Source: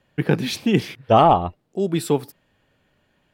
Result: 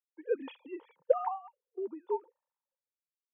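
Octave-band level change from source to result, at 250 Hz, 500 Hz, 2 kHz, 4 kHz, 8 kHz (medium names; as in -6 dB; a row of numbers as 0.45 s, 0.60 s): -24.0 dB, -12.0 dB, under -20 dB, under -25 dB, under -40 dB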